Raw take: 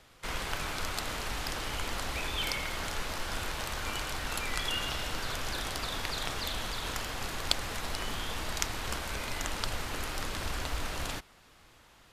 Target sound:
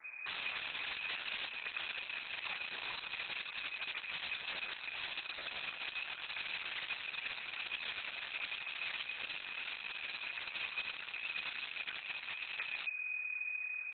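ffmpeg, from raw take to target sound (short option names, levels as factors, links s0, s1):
-filter_complex "[0:a]aeval=exprs='val(0)+0.00251*(sin(2*PI*60*n/s)+sin(2*PI*2*60*n/s)/2+sin(2*PI*3*60*n/s)/3+sin(2*PI*4*60*n/s)/4+sin(2*PI*5*60*n/s)/5)':c=same,adynamicequalizer=threshold=0.00126:dfrequency=140:dqfactor=1.3:tfrequency=140:tqfactor=1.3:attack=5:release=100:ratio=0.375:range=3.5:mode=boostabove:tftype=bell,acrossover=split=120|1400[s0][s1][s2];[s0]dynaudnorm=f=130:g=5:m=2.37[s3];[s3][s1][s2]amix=inputs=3:normalize=0,lowpass=f=3100:t=q:w=0.5098,lowpass=f=3100:t=q:w=0.6013,lowpass=f=3100:t=q:w=0.9,lowpass=f=3100:t=q:w=2.563,afreqshift=-3700,acompressor=threshold=0.0251:ratio=8,asetrate=30296,aresample=44100,atempo=1.45565,aeval=exprs='(mod(53.1*val(0)+1,2)-1)/53.1':c=same,tiltshelf=f=790:g=-7,atempo=0.87" -ar 48000 -c:a libopus -b:a 8k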